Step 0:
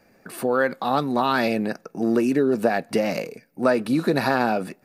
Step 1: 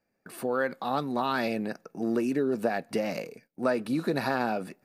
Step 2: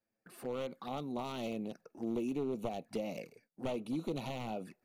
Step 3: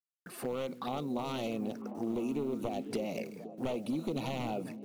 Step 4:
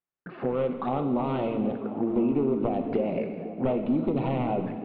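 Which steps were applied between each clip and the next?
gate -48 dBFS, range -14 dB; trim -7 dB
one-sided wavefolder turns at -23.5 dBFS; touch-sensitive flanger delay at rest 9.2 ms, full sweep at -28 dBFS; trim -7.5 dB
compression 2.5:1, threshold -43 dBFS, peak gain reduction 8 dB; word length cut 12-bit, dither none; repeats whose band climbs or falls 250 ms, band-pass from 200 Hz, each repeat 0.7 oct, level -6 dB; trim +8.5 dB
Gaussian low-pass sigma 3.8 samples; plate-style reverb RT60 1.7 s, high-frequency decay 1×, DRR 6.5 dB; trim +8.5 dB

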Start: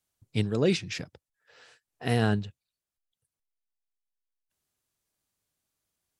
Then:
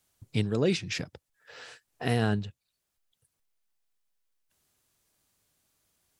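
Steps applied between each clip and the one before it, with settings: compression 1.5:1, threshold -50 dBFS, peak gain reduction 11 dB; trim +9 dB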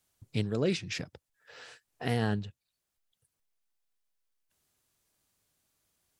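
loudspeaker Doppler distortion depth 0.11 ms; trim -3 dB

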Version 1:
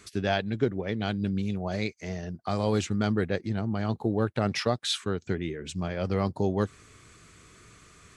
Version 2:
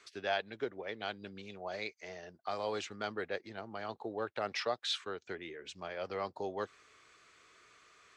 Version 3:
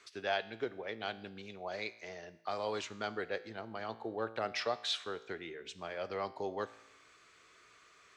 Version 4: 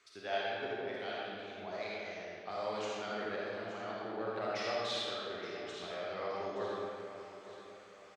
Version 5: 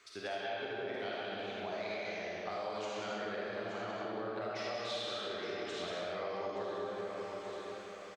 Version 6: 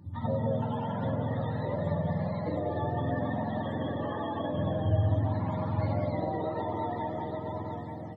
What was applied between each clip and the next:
three-band isolator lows -21 dB, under 410 Hz, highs -18 dB, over 6.2 kHz; trim -5 dB
feedback comb 56 Hz, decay 0.9 s, harmonics all, mix 50%; trim +5 dB
feedback delay 874 ms, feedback 43%, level -13 dB; reverberation RT60 2.2 s, pre-delay 10 ms, DRR -6 dB; trim -7 dB
compression, threshold -43 dBFS, peak gain reduction 12.5 dB; delay 188 ms -5 dB; trim +5.5 dB
spectrum inverted on a logarithmic axis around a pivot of 610 Hz; trim +8.5 dB

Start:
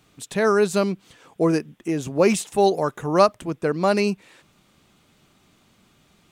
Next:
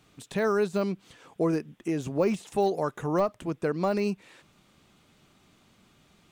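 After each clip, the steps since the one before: de-esser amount 80%; treble shelf 9.3 kHz -4 dB; compression 1.5:1, threshold -27 dBFS, peak gain reduction 5.5 dB; trim -2 dB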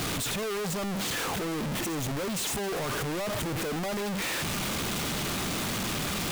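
one-bit comparator; trim -1 dB

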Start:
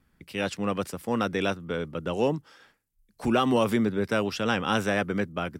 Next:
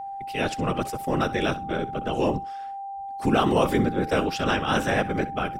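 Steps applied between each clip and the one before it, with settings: flutter echo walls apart 11 m, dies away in 0.23 s; whisper effect; whistle 790 Hz -34 dBFS; trim +2 dB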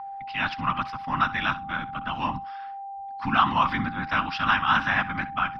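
FFT filter 270 Hz 0 dB, 430 Hz -24 dB, 1 kHz +14 dB, 5.1 kHz +3 dB, 7.4 kHz -28 dB; trim -5.5 dB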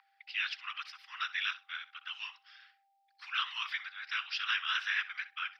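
Bessel high-pass 2.7 kHz, order 6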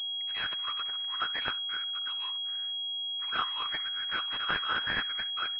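class-D stage that switches slowly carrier 3.3 kHz; trim +7.5 dB

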